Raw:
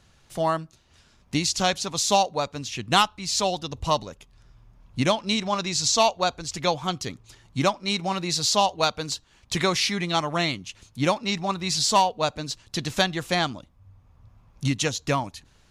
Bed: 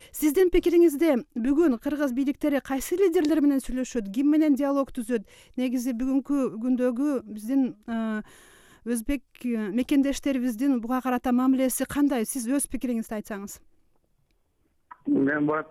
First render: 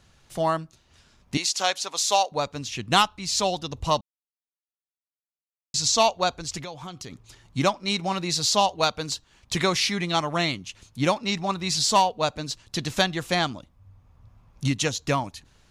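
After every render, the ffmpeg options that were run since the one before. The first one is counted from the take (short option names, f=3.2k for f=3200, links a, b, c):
-filter_complex "[0:a]asettb=1/sr,asplit=3[a][b][c];[a]atrim=end=1.374[d];[b]atrim=start=1.37:end=2.32,asetpts=PTS-STARTPTS,afade=t=in:d=0.004:c=qsin,afade=t=out:st=0.946:d=0.004:c=qsin,highpass=530[e];[c]atrim=start=2.316[f];[d][e]acrossfade=d=0.004:c1=hsin:c2=qsin[g];[g][f]acrossfade=d=0.004:c1=qsin:c2=hsin,asettb=1/sr,asplit=3[h][i][j];[h]atrim=end=6.604[k];[i]atrim=start=6.6:end=7.12,asetpts=PTS-STARTPTS,afade=t=in:d=0.004:c=qsin,afade=t=out:st=0.516:d=0.004:c=qsin,acompressor=threshold=-35dB:ratio=4:attack=3.2:release=140:knee=1:detection=peak[l];[j]atrim=start=7.116[m];[k][l]acrossfade=d=0.004:c1=hsin:c2=qsin[n];[n][m]acrossfade=d=0.004:c1=qsin:c2=hsin,asplit=3[o][p][q];[o]atrim=end=4.01,asetpts=PTS-STARTPTS,afade=t=out:st=4.006:d=0.004:c=hsin[r];[p]atrim=start=4.01:end=5.74,asetpts=PTS-STARTPTS,volume=0[s];[q]atrim=start=5.74,asetpts=PTS-STARTPTS,afade=t=in:d=0.004:c=hsin[t];[r][s][t]concat=n=3:v=0:a=1"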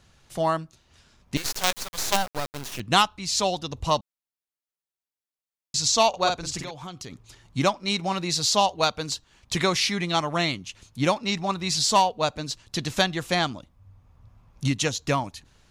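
-filter_complex "[0:a]asettb=1/sr,asplit=3[a][b][c];[a]atrim=end=1.364[d];[b]atrim=start=1.36:end=2.8,asetpts=PTS-STARTPTS,afade=t=in:d=0.004:c=qsin,afade=t=out:st=1.436:d=0.004:c=qsin,acrusher=bits=3:dc=4:mix=0:aa=0.000001[e];[c]atrim=start=2.796[f];[d][e]acrossfade=d=0.004:c1=hsin:c2=qsin[g];[g][f]acrossfade=d=0.004:c1=qsin:c2=hsin,asettb=1/sr,asplit=3[h][i][j];[h]atrim=end=6.094[k];[i]atrim=start=6.09:end=6.71,asetpts=PTS-STARTPTS,afade=t=in:d=0.004:c=qsin,afade=t=out:st=0.616:d=0.004:c=qsin,asplit=2[l][m];[m]adelay=47,volume=-4dB[n];[l][n]amix=inputs=2:normalize=0,atrim=end_sample=27342[o];[j]atrim=start=6.706[p];[k][o]acrossfade=d=0.004:c1=hsin:c2=qsin[q];[q][p]acrossfade=d=0.004:c1=qsin:c2=hsin"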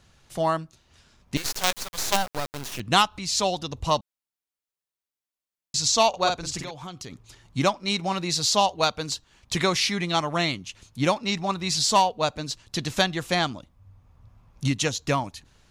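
-filter_complex "[0:a]asettb=1/sr,asplit=3[a][b][c];[a]atrim=end=2.144[d];[b]atrim=start=2.14:end=3.7,asetpts=PTS-STARTPTS,afade=t=in:d=0.004:c=qsin,afade=t=out:st=1.556:d=0.004:c=qsin,acompressor=mode=upward:threshold=-29dB:ratio=2.5:attack=3.2:release=140:knee=2.83:detection=peak[e];[c]atrim=start=3.696[f];[d][e]acrossfade=d=0.004:c1=hsin:c2=qsin[g];[g][f]acrossfade=d=0.004:c1=qsin:c2=hsin"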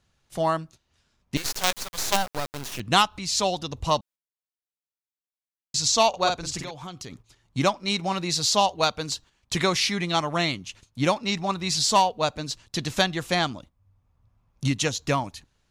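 -af "agate=range=-11dB:threshold=-46dB:ratio=16:detection=peak"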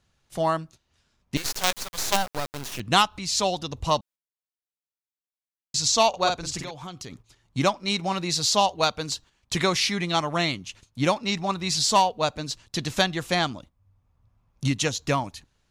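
-af anull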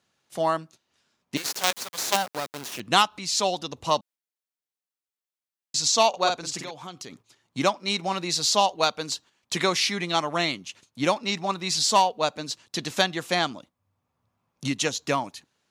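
-af "highpass=210"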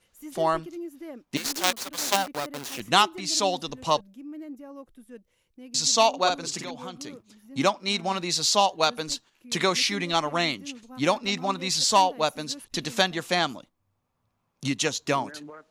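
-filter_complex "[1:a]volume=-18.5dB[a];[0:a][a]amix=inputs=2:normalize=0"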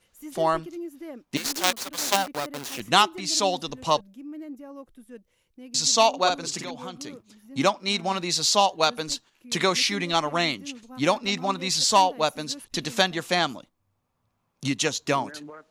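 -af "volume=1dB"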